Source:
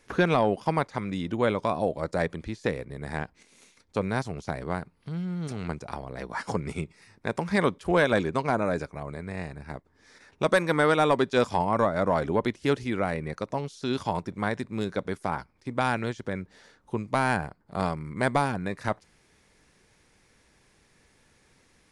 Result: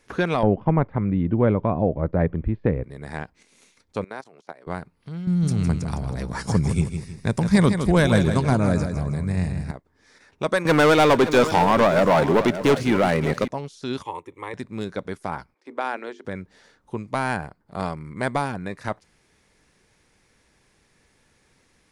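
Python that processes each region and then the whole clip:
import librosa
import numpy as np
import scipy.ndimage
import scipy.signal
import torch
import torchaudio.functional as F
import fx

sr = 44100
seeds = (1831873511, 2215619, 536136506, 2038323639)

y = fx.chain(x, sr, fx.lowpass(hz=2800.0, slope=24),
    fx.tilt_eq(slope=-4.0), at=(0.43, 2.84))
y = fx.chain(y, sr, fx.highpass(hz=380.0, slope=12),
    fx.high_shelf(hz=3200.0, db=-7.0),
    fx.level_steps(step_db=17), at=(4.04, 4.67))
y = fx.chain(y, sr, fx.bass_treble(bass_db=15, treble_db=11),
    fx.echo_feedback(ms=159, feedback_pct=37, wet_db=-8.0), at=(5.27, 9.71))
y = fx.chain(y, sr, fx.highpass(hz=95.0, slope=12),
    fx.leveller(passes=3),
    fx.echo_multitap(ms=(233, 574), db=(-19.5, -12.5)), at=(10.65, 13.48))
y = fx.chain(y, sr, fx.highpass(hz=250.0, slope=6),
    fx.fixed_phaser(hz=1000.0, stages=8), at=(14.02, 14.54))
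y = fx.chain(y, sr, fx.highpass(hz=300.0, slope=24),
    fx.high_shelf(hz=3900.0, db=-11.5),
    fx.hum_notches(base_hz=50, count=9), at=(15.54, 16.25))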